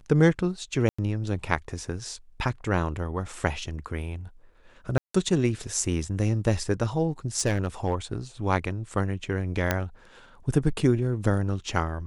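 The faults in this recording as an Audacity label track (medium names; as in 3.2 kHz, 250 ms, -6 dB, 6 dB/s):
0.890000	0.980000	dropout 95 ms
4.980000	5.140000	dropout 164 ms
7.390000	8.130000	clipped -17.5 dBFS
9.710000	9.710000	pop -8 dBFS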